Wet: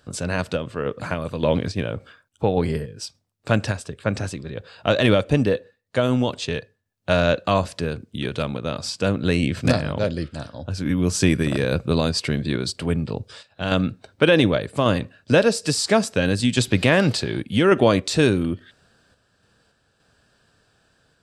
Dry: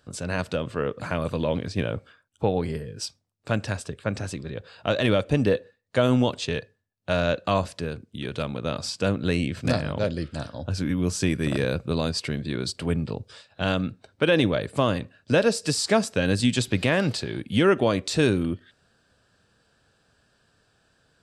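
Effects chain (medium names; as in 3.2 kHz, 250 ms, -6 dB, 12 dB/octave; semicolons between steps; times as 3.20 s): random-step tremolo 3.5 Hz; trim +6 dB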